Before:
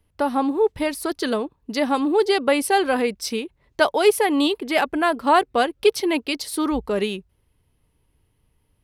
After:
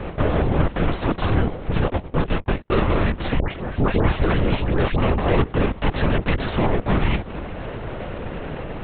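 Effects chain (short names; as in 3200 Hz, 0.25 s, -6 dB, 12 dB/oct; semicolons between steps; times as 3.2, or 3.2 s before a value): per-bin compression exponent 0.4; HPF 140 Hz 12 dB/oct; 1.88–2.72 gate -12 dBFS, range -51 dB; high shelf 2300 Hz -12 dB; in parallel at -1.5 dB: compressor, threshold -27 dBFS, peak gain reduction 16.5 dB; on the sum: soft clip -13.5 dBFS, distortion -11 dB; frequency shift -380 Hz; 3.39–4.99 dispersion highs, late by 0.128 s, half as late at 1500 Hz; LPC vocoder at 8 kHz whisper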